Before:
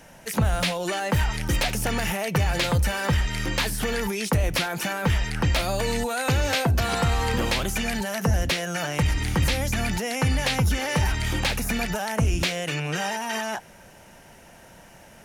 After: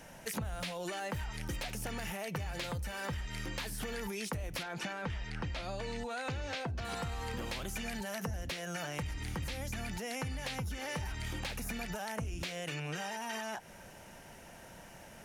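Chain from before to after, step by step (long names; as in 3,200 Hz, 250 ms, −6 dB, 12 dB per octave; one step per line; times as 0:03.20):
0:04.63–0:06.85: low-pass filter 5,600 Hz 12 dB per octave
downward compressor 10 to 1, threshold −32 dBFS, peak gain reduction 14.5 dB
level −3.5 dB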